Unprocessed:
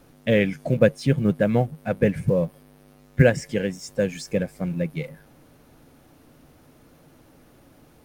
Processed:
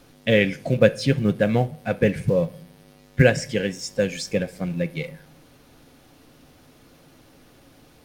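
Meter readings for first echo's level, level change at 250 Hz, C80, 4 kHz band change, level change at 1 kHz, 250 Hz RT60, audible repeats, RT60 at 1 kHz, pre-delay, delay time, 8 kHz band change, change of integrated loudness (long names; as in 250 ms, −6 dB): no echo audible, 0.0 dB, 24.0 dB, +6.5 dB, +1.5 dB, 0.90 s, no echo audible, 0.45 s, 3 ms, no echo audible, +4.5 dB, +1.0 dB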